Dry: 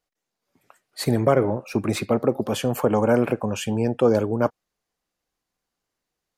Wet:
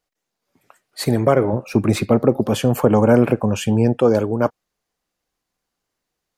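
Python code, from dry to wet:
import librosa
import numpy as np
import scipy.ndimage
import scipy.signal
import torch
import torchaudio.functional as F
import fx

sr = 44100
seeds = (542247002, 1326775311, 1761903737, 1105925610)

y = fx.low_shelf(x, sr, hz=300.0, db=6.5, at=(1.53, 3.93))
y = y * librosa.db_to_amplitude(3.0)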